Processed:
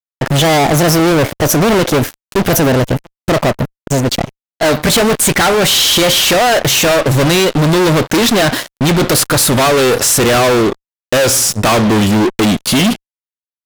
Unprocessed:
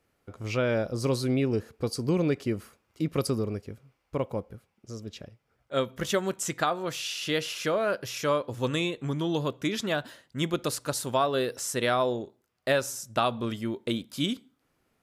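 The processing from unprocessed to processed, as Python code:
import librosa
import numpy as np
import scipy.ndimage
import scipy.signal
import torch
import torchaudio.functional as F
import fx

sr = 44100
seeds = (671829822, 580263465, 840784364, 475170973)

y = fx.speed_glide(x, sr, from_pct=131, to_pct=89)
y = fx.dynamic_eq(y, sr, hz=6700.0, q=1.4, threshold_db=-52.0, ratio=4.0, max_db=-4)
y = fx.fuzz(y, sr, gain_db=45.0, gate_db=-50.0)
y = F.gain(torch.from_numpy(y), 4.0).numpy()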